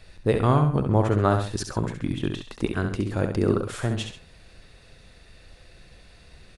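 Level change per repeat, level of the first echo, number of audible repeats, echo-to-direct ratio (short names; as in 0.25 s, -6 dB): -7.5 dB, -6.5 dB, 2, -6.0 dB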